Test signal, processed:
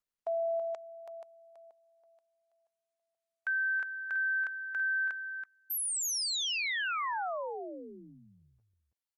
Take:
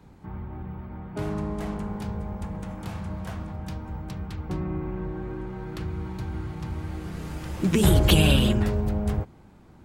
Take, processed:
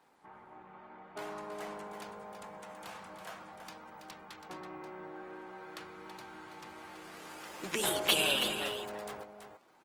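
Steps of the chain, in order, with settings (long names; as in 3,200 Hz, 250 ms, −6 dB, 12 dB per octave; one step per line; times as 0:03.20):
high-pass filter 620 Hz 12 dB per octave
single-tap delay 328 ms −8.5 dB
level −3.5 dB
Opus 24 kbit/s 48,000 Hz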